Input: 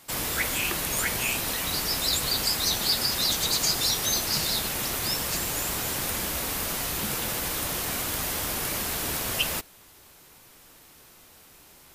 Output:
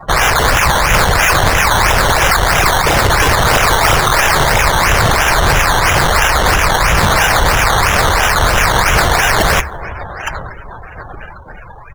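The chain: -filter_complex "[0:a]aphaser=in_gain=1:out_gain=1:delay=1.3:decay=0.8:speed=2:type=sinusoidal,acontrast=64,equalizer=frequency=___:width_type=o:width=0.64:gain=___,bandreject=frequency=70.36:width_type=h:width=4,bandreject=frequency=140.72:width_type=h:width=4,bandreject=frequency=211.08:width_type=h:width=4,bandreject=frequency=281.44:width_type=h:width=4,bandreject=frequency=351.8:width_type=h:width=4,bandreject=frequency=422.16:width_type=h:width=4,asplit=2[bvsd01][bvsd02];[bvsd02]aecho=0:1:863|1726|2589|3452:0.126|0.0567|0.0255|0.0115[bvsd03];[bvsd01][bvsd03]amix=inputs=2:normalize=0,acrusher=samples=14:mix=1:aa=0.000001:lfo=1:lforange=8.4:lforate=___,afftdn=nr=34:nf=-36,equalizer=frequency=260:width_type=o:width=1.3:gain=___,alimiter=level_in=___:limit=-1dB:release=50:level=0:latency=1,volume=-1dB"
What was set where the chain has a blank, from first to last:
1600, 7.5, 3, -13, 13dB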